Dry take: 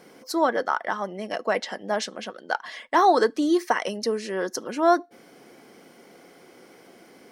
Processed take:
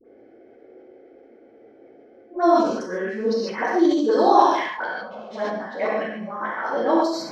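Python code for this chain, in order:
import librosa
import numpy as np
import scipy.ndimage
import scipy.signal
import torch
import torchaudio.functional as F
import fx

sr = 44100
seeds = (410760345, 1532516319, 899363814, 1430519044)

p1 = np.flip(x).copy()
p2 = fx.env_lowpass(p1, sr, base_hz=1100.0, full_db=-17.5)
p3 = fx.high_shelf(p2, sr, hz=3800.0, db=-8.0)
p4 = fx.notch(p3, sr, hz=2800.0, q=11.0)
p5 = fx.env_phaser(p4, sr, low_hz=160.0, high_hz=2000.0, full_db=-20.5)
p6 = fx.hum_notches(p5, sr, base_hz=50, count=6)
p7 = fx.dispersion(p6, sr, late='highs', ms=53.0, hz=820.0)
p8 = p7 + fx.room_flutter(p7, sr, wall_m=12.0, rt60_s=0.41, dry=0)
p9 = fx.rev_gated(p8, sr, seeds[0], gate_ms=170, shape='flat', drr_db=-5.0)
p10 = fx.sustainer(p9, sr, db_per_s=59.0)
y = p10 * librosa.db_to_amplitude(-2.0)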